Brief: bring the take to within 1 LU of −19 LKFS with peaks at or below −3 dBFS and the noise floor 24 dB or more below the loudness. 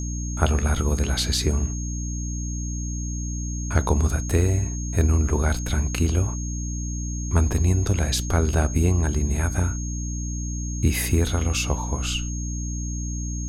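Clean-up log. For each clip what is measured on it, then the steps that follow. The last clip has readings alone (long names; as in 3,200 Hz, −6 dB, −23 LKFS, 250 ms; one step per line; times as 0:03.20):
mains hum 60 Hz; hum harmonics up to 300 Hz; level of the hum −26 dBFS; interfering tone 6,500 Hz; level of the tone −35 dBFS; integrated loudness −24.5 LKFS; sample peak −3.5 dBFS; target loudness −19.0 LKFS
→ mains-hum notches 60/120/180/240/300 Hz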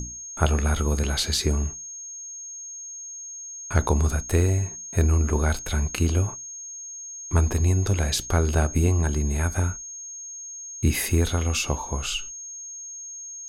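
mains hum none found; interfering tone 6,500 Hz; level of the tone −35 dBFS
→ notch filter 6,500 Hz, Q 30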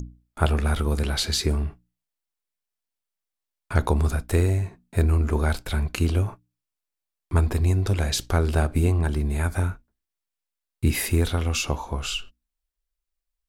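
interfering tone none found; integrated loudness −24.5 LKFS; sample peak −5.0 dBFS; target loudness −19.0 LKFS
→ level +5.5 dB
brickwall limiter −3 dBFS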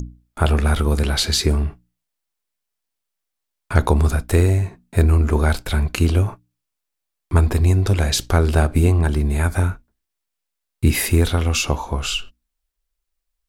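integrated loudness −19.0 LKFS; sample peak −3.0 dBFS; background noise floor −80 dBFS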